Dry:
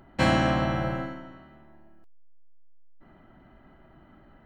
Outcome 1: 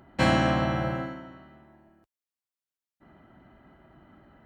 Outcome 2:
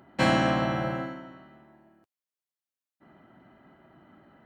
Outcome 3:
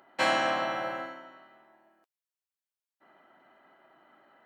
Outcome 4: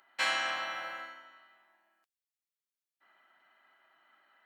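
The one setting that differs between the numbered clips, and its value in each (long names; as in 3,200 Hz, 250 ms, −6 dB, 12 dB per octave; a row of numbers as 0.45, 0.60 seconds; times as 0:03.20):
high-pass filter, corner frequency: 51, 130, 540, 1,500 Hertz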